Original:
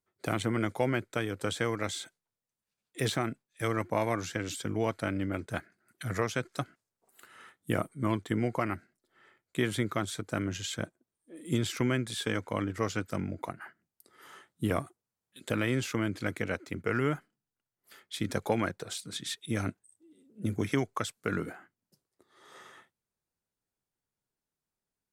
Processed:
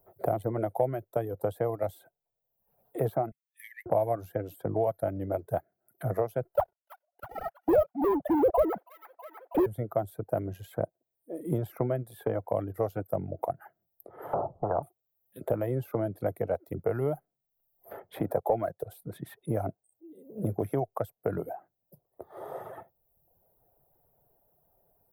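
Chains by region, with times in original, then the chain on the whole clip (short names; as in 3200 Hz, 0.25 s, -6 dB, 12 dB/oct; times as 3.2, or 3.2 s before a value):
3.31–3.86 overdrive pedal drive 10 dB, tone 6000 Hz, clips at -15.5 dBFS + brick-wall FIR high-pass 1700 Hz
6.55–9.66 sine-wave speech + sample leveller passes 5 + thin delay 0.323 s, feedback 45%, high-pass 1800 Hz, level -11.5 dB
14.33–14.83 steep low-pass 1200 Hz 72 dB/oct + spectral compressor 10:1
18.19–18.83 HPF 210 Hz 6 dB/oct + sample leveller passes 1
whole clip: EQ curve 140 Hz 0 dB, 240 Hz -9 dB, 690 Hz +10 dB, 1100 Hz -9 dB, 2500 Hz -23 dB, 7100 Hz -29 dB, 13000 Hz +5 dB; reverb removal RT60 0.73 s; three-band squash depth 70%; gain +1.5 dB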